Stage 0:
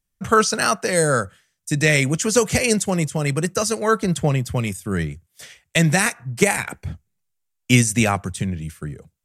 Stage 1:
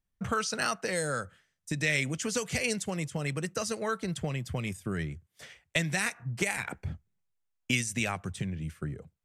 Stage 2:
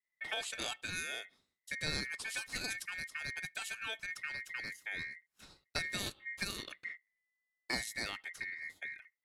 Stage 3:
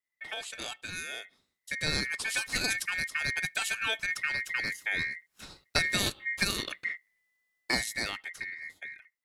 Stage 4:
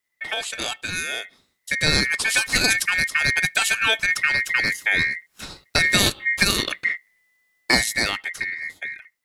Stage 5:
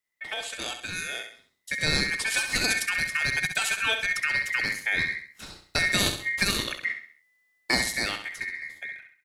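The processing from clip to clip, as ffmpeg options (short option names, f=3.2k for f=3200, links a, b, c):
-filter_complex "[0:a]highshelf=f=4.3k:g=-12,acrossover=split=2000[a][b];[a]acompressor=threshold=-27dB:ratio=6[c];[c][b]amix=inputs=2:normalize=0,volume=-3.5dB"
-af "aeval=exprs='val(0)*sin(2*PI*2000*n/s)':c=same,adynamicequalizer=threshold=0.00282:dfrequency=620:dqfactor=0.86:tfrequency=620:tqfactor=0.86:attack=5:release=100:ratio=0.375:range=3:mode=cutabove:tftype=bell,volume=-5.5dB"
-af "dynaudnorm=f=340:g=11:m=10dB"
-af "alimiter=level_in=12dB:limit=-1dB:release=50:level=0:latency=1,volume=-1dB"
-af "aecho=1:1:66|132|198|264:0.398|0.155|0.0606|0.0236,volume=-6.5dB"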